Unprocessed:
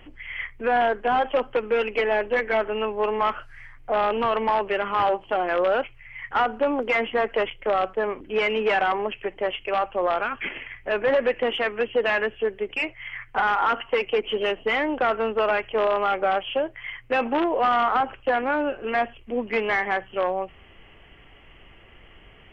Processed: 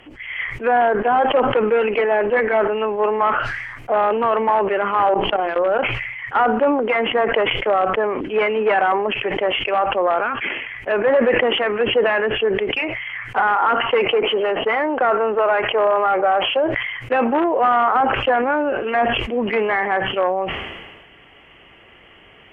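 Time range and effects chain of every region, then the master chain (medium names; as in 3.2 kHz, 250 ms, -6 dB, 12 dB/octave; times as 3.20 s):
5.14–5.79 s: bass shelf 140 Hz +11.5 dB + hum notches 60/120/180/240/300/360/420 Hz + level held to a coarse grid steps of 22 dB
14.05–16.64 s: overdrive pedal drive 10 dB, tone 1.8 kHz, clips at -12.5 dBFS + treble shelf 4.1 kHz -5.5 dB
whole clip: low-pass that closes with the level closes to 1.8 kHz, closed at -21.5 dBFS; high-pass 210 Hz 6 dB/octave; decay stretcher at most 40 dB/s; trim +5.5 dB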